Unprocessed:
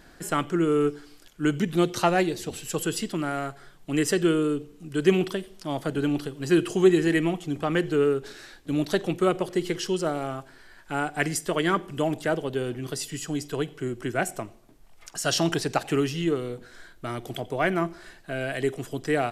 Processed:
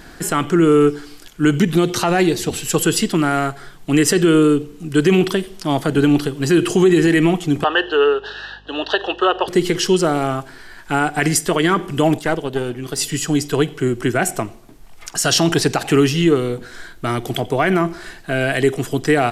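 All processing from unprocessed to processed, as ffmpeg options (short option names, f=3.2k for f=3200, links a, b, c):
-filter_complex "[0:a]asettb=1/sr,asplit=3[a][b][c];[a]atrim=end=7.644[d];[b]atrim=start=7.64:end=9.48,asetpts=PTS-STARTPTS,afade=t=in:d=0.004:c=qsin,afade=t=out:st=1.836:d=0.004:c=qsin,highpass=f=450:w=0.5412,highpass=f=450:w=1.3066,equalizer=f=890:t=q:w=4:g=5,equalizer=f=1.7k:t=q:w=4:g=4,equalizer=f=2.9k:t=q:w=4:g=7,lowpass=f=4.2k:w=0.5412,lowpass=f=4.2k:w=1.3066,aeval=exprs='val(0)+0.00112*(sin(2*PI*50*n/s)+sin(2*PI*2*50*n/s)/2+sin(2*PI*3*50*n/s)/3+sin(2*PI*4*50*n/s)/4+sin(2*PI*5*50*n/s)/5)':c=same,asuperstop=centerf=2200:order=12:qfactor=3.2[e];[c]atrim=start=9.476[f];[d][e]acrossfade=d=0.004:c1=hsin:c2=qsin[g];[g][f]acrossfade=d=0.004:c1=qsin:c2=hsin,asettb=1/sr,asplit=3[h][i][j];[h]atrim=end=12.194[k];[i]atrim=start=12.19:end=12.98,asetpts=PTS-STARTPTS,afade=t=in:d=0.004:c=qsin,afade=t=out:st=0.786:d=0.004:c=qsin,lowshelf=f=160:g=-5.5,aeval=exprs='(tanh(7.94*val(0)+0.8)-tanh(0.8))/7.94':c=same[l];[j]atrim=start=12.976[m];[k][l]acrossfade=d=0.004:c1=hsin:c2=qsin[n];[n][m]acrossfade=d=0.004:c1=qsin:c2=hsin,equalizer=f=570:t=o:w=0.25:g=-5.5,alimiter=level_in=16dB:limit=-1dB:release=50:level=0:latency=1,volume=-4dB"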